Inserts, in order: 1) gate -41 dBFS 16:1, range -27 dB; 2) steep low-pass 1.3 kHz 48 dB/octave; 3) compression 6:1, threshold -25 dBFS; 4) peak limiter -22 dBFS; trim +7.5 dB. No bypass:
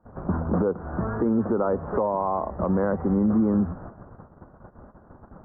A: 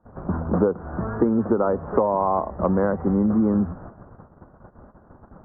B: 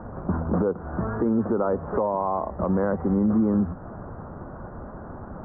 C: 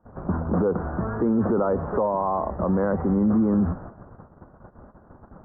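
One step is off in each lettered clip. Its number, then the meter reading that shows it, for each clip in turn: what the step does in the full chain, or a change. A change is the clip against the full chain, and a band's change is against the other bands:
4, crest factor change +6.0 dB; 1, momentary loudness spread change +9 LU; 3, mean gain reduction 7.0 dB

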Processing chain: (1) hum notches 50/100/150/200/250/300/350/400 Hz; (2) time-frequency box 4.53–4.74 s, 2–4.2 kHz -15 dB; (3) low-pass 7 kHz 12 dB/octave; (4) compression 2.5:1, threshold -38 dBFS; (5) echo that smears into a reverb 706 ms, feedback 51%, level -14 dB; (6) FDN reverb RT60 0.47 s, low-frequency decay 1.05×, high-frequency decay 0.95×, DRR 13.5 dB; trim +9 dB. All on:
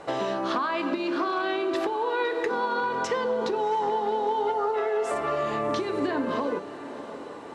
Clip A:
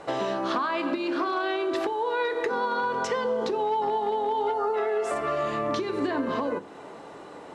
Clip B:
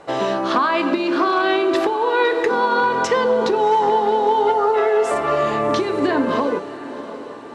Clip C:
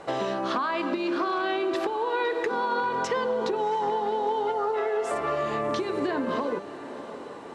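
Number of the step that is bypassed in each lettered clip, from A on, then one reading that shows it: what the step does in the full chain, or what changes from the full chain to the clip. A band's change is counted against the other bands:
5, echo-to-direct -10.0 dB to -13.5 dB; 4, mean gain reduction 7.5 dB; 6, echo-to-direct -10.0 dB to -12.5 dB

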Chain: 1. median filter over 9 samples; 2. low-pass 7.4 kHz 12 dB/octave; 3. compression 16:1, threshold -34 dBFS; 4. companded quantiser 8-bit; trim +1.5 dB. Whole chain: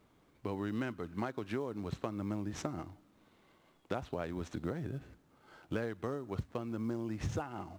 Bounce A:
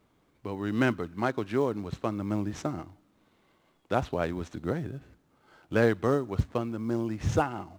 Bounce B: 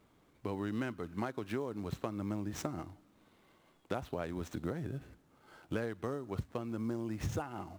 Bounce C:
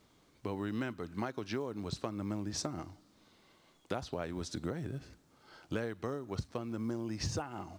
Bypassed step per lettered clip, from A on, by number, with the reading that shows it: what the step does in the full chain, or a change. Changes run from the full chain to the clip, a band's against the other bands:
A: 3, mean gain reduction 6.5 dB; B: 2, 8 kHz band +2.0 dB; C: 1, momentary loudness spread change +3 LU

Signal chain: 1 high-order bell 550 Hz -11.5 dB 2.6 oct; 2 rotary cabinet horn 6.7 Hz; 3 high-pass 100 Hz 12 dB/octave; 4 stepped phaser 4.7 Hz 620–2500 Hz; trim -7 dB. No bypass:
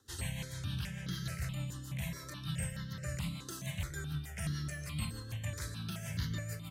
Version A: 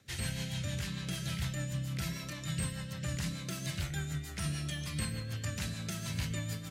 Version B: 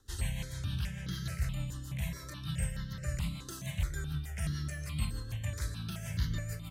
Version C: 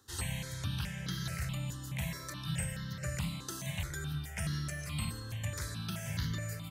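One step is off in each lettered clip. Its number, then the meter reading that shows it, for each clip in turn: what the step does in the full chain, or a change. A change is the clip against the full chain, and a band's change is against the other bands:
4, loudness change +3.0 LU; 3, 125 Hz band +2.5 dB; 2, loudness change +2.0 LU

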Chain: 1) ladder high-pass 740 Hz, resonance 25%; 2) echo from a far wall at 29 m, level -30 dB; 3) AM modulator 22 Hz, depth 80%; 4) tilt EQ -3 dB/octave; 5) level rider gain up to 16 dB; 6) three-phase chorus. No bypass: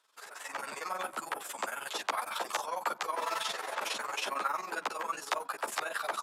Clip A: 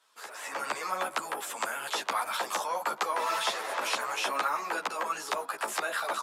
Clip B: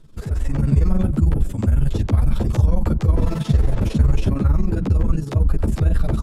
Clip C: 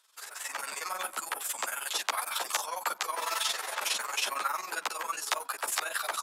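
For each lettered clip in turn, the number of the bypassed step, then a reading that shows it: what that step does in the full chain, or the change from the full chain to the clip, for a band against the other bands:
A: 3, loudness change +4.0 LU; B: 1, 250 Hz band +33.0 dB; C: 4, 8 kHz band +8.5 dB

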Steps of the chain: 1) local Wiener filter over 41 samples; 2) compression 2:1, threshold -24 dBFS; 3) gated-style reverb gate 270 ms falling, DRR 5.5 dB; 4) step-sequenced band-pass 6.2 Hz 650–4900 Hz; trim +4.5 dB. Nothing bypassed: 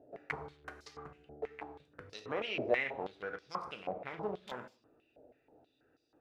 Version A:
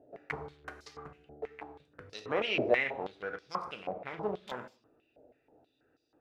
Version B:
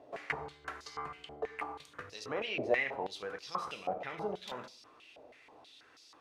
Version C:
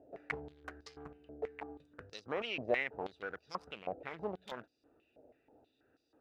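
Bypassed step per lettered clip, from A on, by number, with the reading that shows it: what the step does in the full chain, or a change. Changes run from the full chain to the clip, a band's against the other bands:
2, loudness change +4.5 LU; 1, 1 kHz band +2.5 dB; 3, momentary loudness spread change -1 LU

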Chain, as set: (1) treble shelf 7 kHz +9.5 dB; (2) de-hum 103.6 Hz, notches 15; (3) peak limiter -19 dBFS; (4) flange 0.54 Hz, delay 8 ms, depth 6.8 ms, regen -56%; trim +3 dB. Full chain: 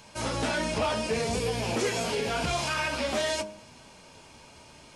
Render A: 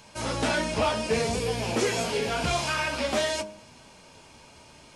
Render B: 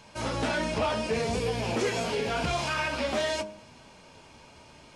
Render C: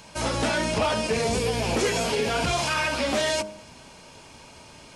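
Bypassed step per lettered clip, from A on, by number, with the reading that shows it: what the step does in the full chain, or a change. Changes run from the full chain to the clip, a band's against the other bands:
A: 3, crest factor change +2.0 dB; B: 1, 8 kHz band -4.5 dB; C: 4, crest factor change -2.0 dB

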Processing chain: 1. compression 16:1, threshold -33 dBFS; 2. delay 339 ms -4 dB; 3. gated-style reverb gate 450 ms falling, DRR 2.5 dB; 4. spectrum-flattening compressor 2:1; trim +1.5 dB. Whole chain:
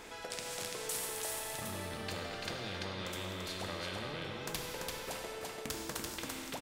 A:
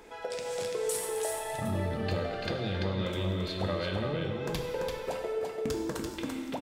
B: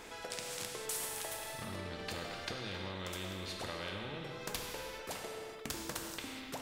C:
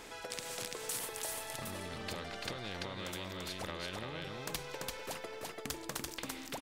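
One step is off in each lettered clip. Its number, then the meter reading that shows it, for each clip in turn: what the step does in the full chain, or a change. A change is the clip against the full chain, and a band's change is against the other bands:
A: 4, 125 Hz band +8.5 dB; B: 2, loudness change -1.5 LU; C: 3, crest factor change +1.5 dB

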